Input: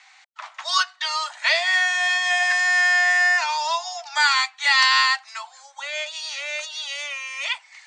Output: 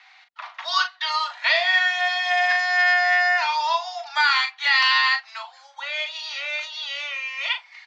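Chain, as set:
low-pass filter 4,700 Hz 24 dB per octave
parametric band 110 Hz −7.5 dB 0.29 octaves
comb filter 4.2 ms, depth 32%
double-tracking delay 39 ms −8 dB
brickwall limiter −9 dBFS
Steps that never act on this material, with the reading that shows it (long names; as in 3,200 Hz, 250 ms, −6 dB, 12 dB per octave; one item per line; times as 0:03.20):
parametric band 110 Hz: nothing at its input below 570 Hz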